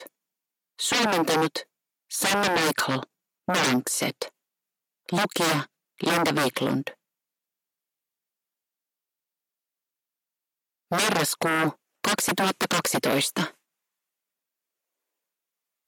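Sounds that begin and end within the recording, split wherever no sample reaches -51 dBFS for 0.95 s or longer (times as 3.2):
10.91–13.54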